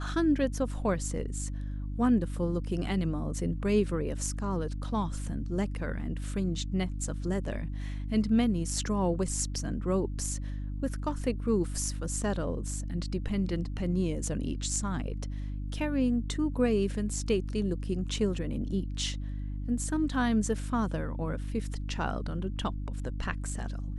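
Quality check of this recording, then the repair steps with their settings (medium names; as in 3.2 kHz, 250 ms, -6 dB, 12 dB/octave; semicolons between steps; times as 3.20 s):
hum 50 Hz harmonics 6 -35 dBFS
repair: de-hum 50 Hz, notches 6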